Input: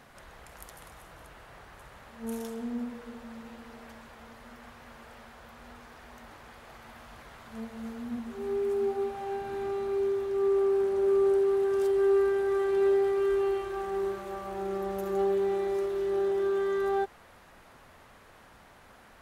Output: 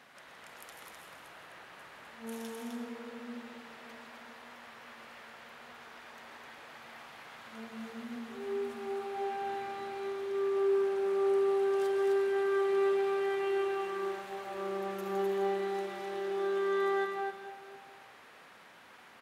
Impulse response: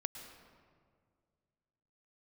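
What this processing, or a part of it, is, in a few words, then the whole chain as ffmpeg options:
stadium PA: -filter_complex "[0:a]highpass=190,equalizer=f=2700:t=o:w=2.2:g=7,aecho=1:1:166.2|256.6:0.282|0.631[s0];[1:a]atrim=start_sample=2205[s1];[s0][s1]afir=irnorm=-1:irlink=0,volume=0.631"

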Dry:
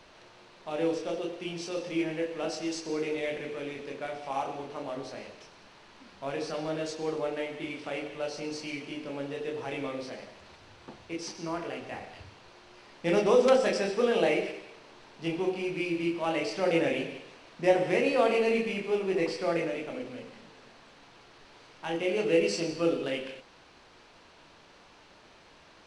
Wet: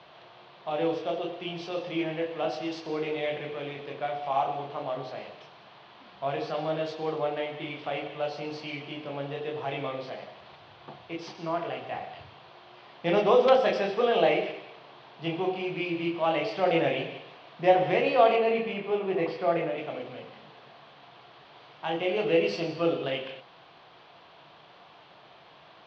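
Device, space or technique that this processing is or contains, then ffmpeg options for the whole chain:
guitar cabinet: -filter_complex "[0:a]asettb=1/sr,asplit=3[s0][s1][s2];[s0]atrim=end=18.364[s3];[s1]atrim=start=18.36:end=19.78,asetpts=PTS-STARTPTS,afade=t=in:d=0.004:c=qsin,afade=t=out:st=1.416:d=0.004:c=qsin,highshelf=f=4500:g=-11.5[s4];[s2]atrim=start=19.776[s5];[s3][s4]acrossfade=d=0.004:c1=hsin:c2=qsin[s6];[s6][s5]acrossfade=d=0.004:c1=qsin:c2=hsin,highpass=110,equalizer=f=140:t=q:w=4:g=8,equalizer=f=250:t=q:w=4:g=-6,equalizer=f=710:t=q:w=4:g=9,equalizer=f=1100:t=q:w=4:g=5,equalizer=f=3300:t=q:w=4:g=6,lowpass=f=4300:w=0.5412,lowpass=f=4300:w=1.3066"

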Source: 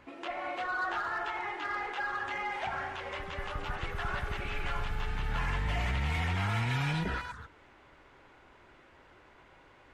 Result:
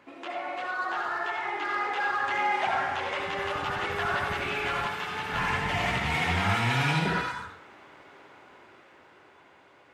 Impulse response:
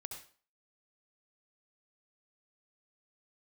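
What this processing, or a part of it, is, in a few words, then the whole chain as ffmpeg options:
far laptop microphone: -filter_complex "[1:a]atrim=start_sample=2205[s0];[0:a][s0]afir=irnorm=-1:irlink=0,highpass=170,dynaudnorm=f=400:g=9:m=2,asettb=1/sr,asplit=3[s1][s2][s3];[s1]atrim=end=4.864[s4];[s2]atrim=start=4.86:end=5.33,asetpts=PTS-STARTPTS,afade=t=in:d=0.004:c=qsin,afade=t=out:st=0.466:d=0.004:c=qsin,highpass=f=260:p=1[s5];[s3]atrim=start=5.326[s6];[s4][s5]acrossfade=d=0.004:c1=hsin:c2=qsin[s7];[s7][s6]acrossfade=d=0.004:c1=qsin:c2=hsin,volume=1.88"

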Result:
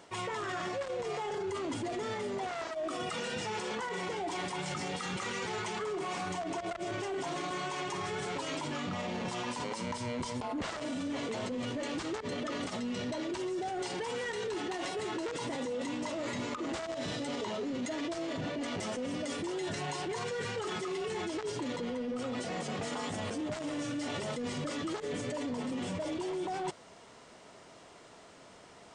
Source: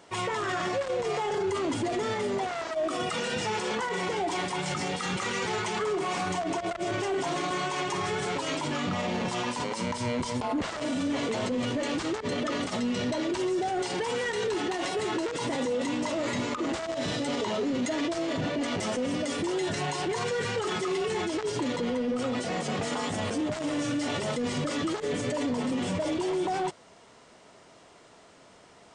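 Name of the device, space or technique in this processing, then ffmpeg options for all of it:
compression on the reversed sound: -af "areverse,acompressor=threshold=0.02:ratio=5,areverse"

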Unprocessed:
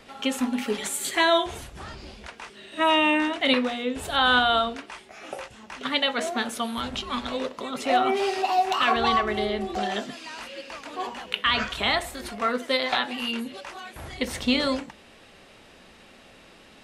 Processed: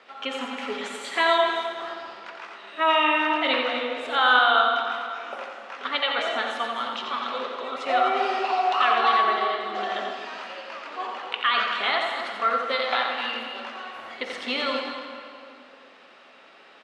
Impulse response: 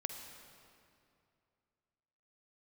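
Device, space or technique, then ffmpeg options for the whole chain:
station announcement: -filter_complex "[0:a]highpass=460,lowpass=3900,equalizer=f=1300:t=o:w=0.48:g=5,aecho=1:1:87.46|253.6:0.501|0.316[s0];[1:a]atrim=start_sample=2205[s1];[s0][s1]afir=irnorm=-1:irlink=0"

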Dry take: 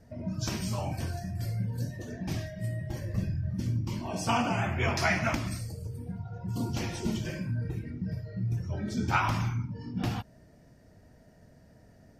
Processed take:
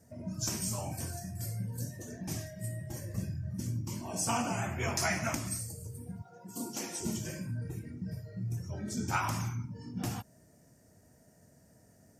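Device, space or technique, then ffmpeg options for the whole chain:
budget condenser microphone: -filter_complex "[0:a]highpass=79,highshelf=f=5400:t=q:w=1.5:g=11.5,asettb=1/sr,asplit=3[s0][s1][s2];[s0]atrim=end=6.224[s3];[s1]atrim=start=6.22:end=7.01,asetpts=PTS-STARTPTS,afade=t=in:d=0.004:c=qsin,afade=t=out:st=0.786:d=0.004:c=qsin,highpass=f=210:w=0.5412,highpass=f=210:w=1.3066[s4];[s2]atrim=start=7.006[s5];[s3][s4]acrossfade=d=0.004:c1=hsin:c2=qsin[s6];[s6][s5]acrossfade=d=0.004:c1=qsin:c2=hsin,volume=0.596"

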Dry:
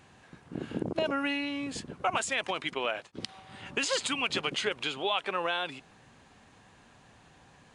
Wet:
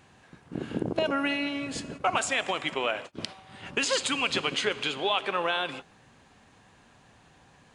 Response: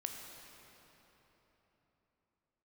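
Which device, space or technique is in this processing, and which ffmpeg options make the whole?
keyed gated reverb: -filter_complex "[0:a]asplit=3[s0][s1][s2];[1:a]atrim=start_sample=2205[s3];[s1][s3]afir=irnorm=-1:irlink=0[s4];[s2]apad=whole_len=341680[s5];[s4][s5]sidechaingate=range=0.0224:threshold=0.00631:ratio=16:detection=peak,volume=0.531[s6];[s0][s6]amix=inputs=2:normalize=0"

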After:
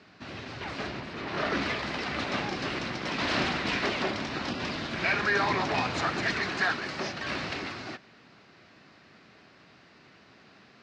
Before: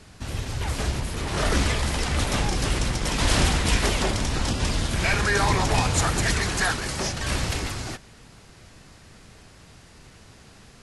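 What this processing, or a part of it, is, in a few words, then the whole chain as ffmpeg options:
kitchen radio: -filter_complex "[0:a]asettb=1/sr,asplit=3[s0][s1][s2];[s0]atrim=end=0.874[s3];[s1]atrim=start=0.87:end=1.62,asetpts=PTS-STARTPTS,afade=t=in:d=0.004:c=qsin,afade=t=out:st=0.746:d=0.004:c=qsin,highshelf=f=6300:g=-6[s4];[s2]atrim=start=1.616[s5];[s3][s4]acrossfade=d=0.004:c1=hsin:c2=qsin[s6];[s6][s5]acrossfade=d=0.004:c1=qsin:c2=hsin,highpass=230,equalizer=f=480:t=q:w=4:g=-5,equalizer=f=880:t=q:w=4:g=-4,equalizer=f=3300:t=q:w=4:g=-5,lowpass=f=4300:w=0.5412,lowpass=f=4300:w=1.3066,volume=0.841"

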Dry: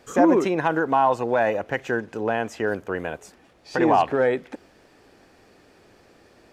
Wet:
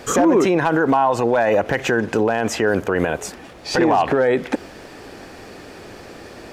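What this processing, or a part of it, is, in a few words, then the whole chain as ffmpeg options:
loud club master: -af "acompressor=threshold=0.0708:ratio=2,asoftclip=type=hard:threshold=0.178,alimiter=level_in=15:limit=0.891:release=50:level=0:latency=1,volume=0.422"

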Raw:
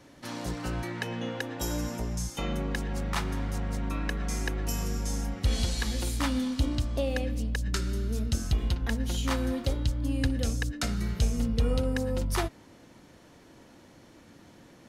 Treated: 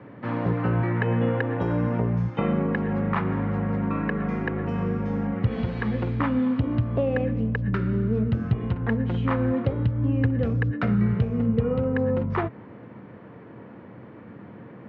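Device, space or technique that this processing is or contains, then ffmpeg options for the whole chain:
bass amplifier: -af "acompressor=threshold=0.0398:ratio=4,highpass=f=82:w=0.5412,highpass=f=82:w=1.3066,equalizer=f=120:t=q:w=4:g=9,equalizer=f=200:t=q:w=4:g=8,equalizer=f=450:t=q:w=4:g=7,equalizer=f=1100:t=q:w=4:g=4,lowpass=f=2200:w=0.5412,lowpass=f=2200:w=1.3066,volume=2.24"

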